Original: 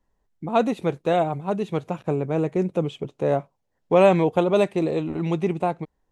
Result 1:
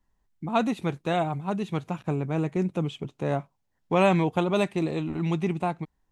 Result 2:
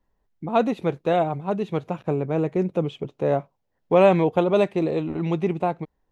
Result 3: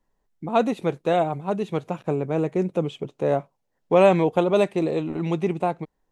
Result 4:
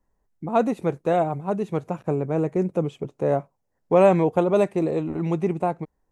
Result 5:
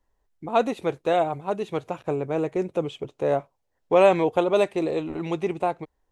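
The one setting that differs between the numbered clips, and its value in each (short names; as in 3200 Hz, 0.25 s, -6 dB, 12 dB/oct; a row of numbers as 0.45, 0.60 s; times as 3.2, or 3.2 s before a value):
bell, frequency: 500, 8800, 68, 3400, 180 Hz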